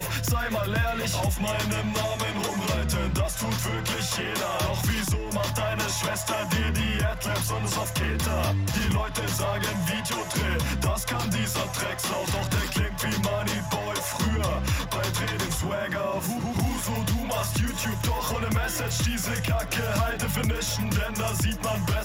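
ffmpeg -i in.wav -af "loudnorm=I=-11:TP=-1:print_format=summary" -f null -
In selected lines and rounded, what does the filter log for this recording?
Input Integrated:    -26.9 LUFS
Input True Peak:     -13.5 dBTP
Input LRA:             0.7 LU
Input Threshold:     -36.9 LUFS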